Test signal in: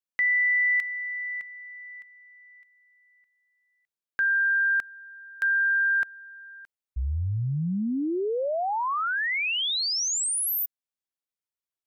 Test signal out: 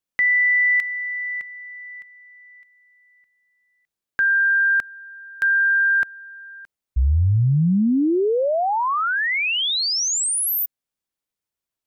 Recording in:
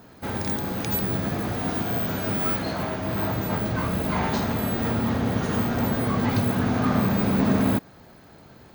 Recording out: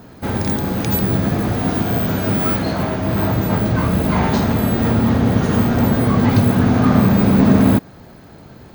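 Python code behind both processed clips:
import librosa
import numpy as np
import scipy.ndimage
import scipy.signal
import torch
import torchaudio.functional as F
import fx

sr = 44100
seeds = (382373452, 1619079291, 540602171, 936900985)

y = fx.low_shelf(x, sr, hz=450.0, db=5.5)
y = y * 10.0 ** (5.0 / 20.0)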